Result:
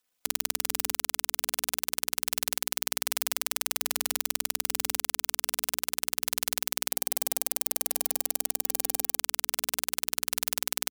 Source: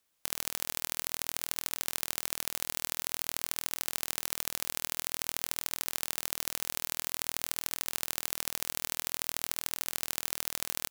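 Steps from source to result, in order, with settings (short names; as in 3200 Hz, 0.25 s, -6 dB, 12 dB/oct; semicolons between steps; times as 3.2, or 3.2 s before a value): cycle switcher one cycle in 2, muted; notches 60/120/180/240/300/360/420 Hz; comb 4 ms, depth 85%; sample leveller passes 3; 6.91–9.19 EQ curve 160 Hz 0 dB, 300 Hz +4 dB, 790 Hz +3 dB, 1100 Hz -7 dB, 3500 Hz -6 dB, 9600 Hz +2 dB; spectral gate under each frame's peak -25 dB strong; low shelf 130 Hz -3.5 dB; maximiser +6 dB; gain -1 dB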